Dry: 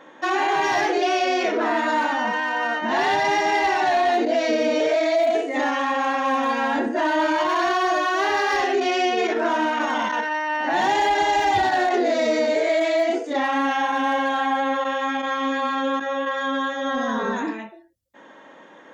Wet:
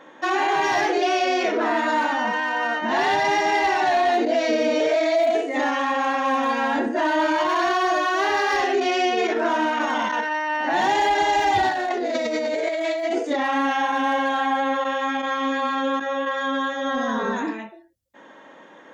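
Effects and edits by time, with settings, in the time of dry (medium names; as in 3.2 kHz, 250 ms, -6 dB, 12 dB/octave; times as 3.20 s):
11.71–13.46 s: compressor with a negative ratio -24 dBFS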